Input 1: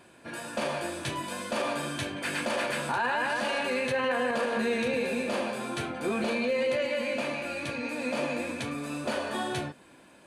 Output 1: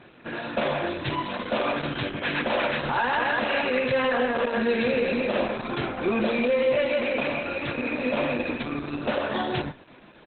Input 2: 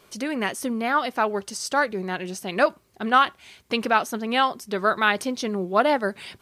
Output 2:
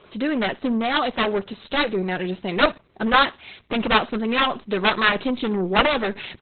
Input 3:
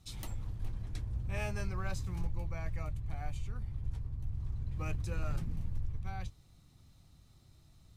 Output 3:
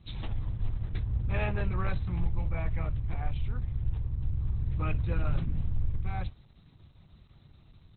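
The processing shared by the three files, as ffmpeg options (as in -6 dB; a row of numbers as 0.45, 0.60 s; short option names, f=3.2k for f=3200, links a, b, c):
-af "aeval=exprs='0.531*(cos(1*acos(clip(val(0)/0.531,-1,1)))-cos(1*PI/2))+0.00841*(cos(2*acos(clip(val(0)/0.531,-1,1)))-cos(2*PI/2))+0.00335*(cos(5*acos(clip(val(0)/0.531,-1,1)))-cos(5*PI/2))+0.237*(cos(7*acos(clip(val(0)/0.531,-1,1)))-cos(7*PI/2))+0.0211*(cos(8*acos(clip(val(0)/0.531,-1,1)))-cos(8*PI/2))':c=same,aecho=1:1:61|122:0.075|0.0232,volume=1dB" -ar 48000 -c:a libopus -b:a 8k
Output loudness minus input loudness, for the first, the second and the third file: +4.5, +2.0, +6.5 LU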